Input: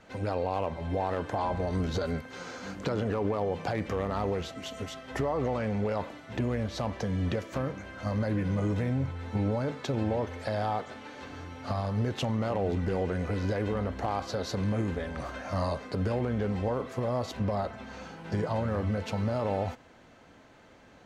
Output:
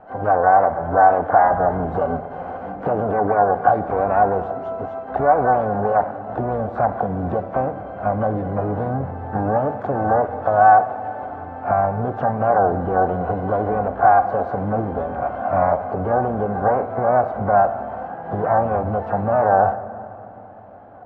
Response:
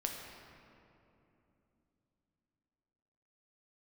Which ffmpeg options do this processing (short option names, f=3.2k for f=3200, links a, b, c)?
-filter_complex "[0:a]lowpass=f=750:t=q:w=8.4,equalizer=f=84:t=o:w=2.7:g=-2,asplit=3[a][b][c];[b]asetrate=66075,aresample=44100,atempo=0.66742,volume=-16dB[d];[c]asetrate=88200,aresample=44100,atempo=0.5,volume=-15dB[e];[a][d][e]amix=inputs=3:normalize=0,asplit=2[f][g];[1:a]atrim=start_sample=2205[h];[g][h]afir=irnorm=-1:irlink=0,volume=-7.5dB[i];[f][i]amix=inputs=2:normalize=0,volume=2dB"